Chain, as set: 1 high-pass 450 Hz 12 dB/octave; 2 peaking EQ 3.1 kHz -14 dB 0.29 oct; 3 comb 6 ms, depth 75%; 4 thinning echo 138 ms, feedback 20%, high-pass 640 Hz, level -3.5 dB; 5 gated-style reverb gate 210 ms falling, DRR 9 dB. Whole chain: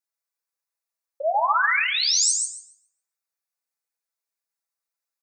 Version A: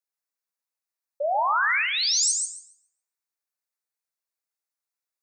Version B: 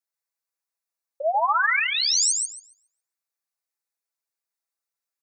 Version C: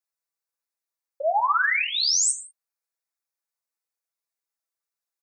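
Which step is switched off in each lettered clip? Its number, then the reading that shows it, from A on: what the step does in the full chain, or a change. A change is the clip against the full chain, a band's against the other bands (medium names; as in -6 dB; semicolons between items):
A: 3, loudness change -2.0 LU; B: 5, echo-to-direct -2.5 dB to -4.5 dB; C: 4, echo-to-direct -2.5 dB to -9.0 dB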